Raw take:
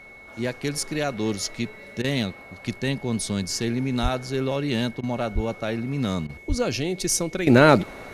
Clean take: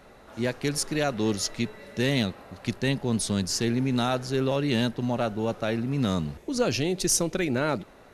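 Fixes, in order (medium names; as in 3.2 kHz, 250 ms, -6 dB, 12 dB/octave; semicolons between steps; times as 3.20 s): band-stop 2.2 kHz, Q 30; 4.02–4.14 s: high-pass 140 Hz 24 dB/octave; 5.34–5.46 s: high-pass 140 Hz 24 dB/octave; 6.48–6.60 s: high-pass 140 Hz 24 dB/octave; interpolate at 2.02/5.01/6.27 s, 21 ms; 7.47 s: gain correction -12 dB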